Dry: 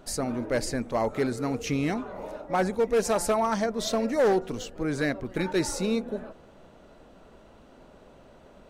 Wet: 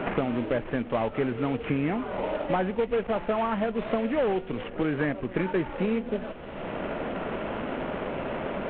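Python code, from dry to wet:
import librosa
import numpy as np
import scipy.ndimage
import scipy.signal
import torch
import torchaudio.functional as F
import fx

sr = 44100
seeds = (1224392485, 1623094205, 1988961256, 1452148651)

y = fx.cvsd(x, sr, bps=16000)
y = fx.band_squash(y, sr, depth_pct=100)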